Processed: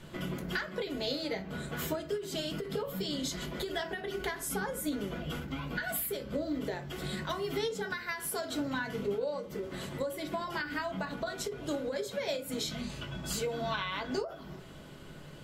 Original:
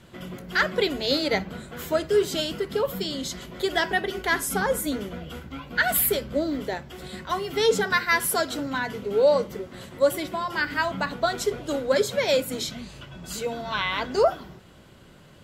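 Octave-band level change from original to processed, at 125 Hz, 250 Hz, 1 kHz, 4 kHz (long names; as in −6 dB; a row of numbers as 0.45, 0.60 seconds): −3.0, −5.5, −11.0, −9.0 decibels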